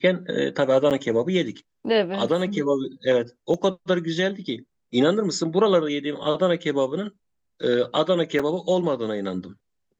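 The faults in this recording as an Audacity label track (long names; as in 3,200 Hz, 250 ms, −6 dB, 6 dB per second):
0.900000	0.910000	drop-out 8 ms
3.540000	3.540000	drop-out 2.3 ms
8.390000	8.390000	drop-out 4.9 ms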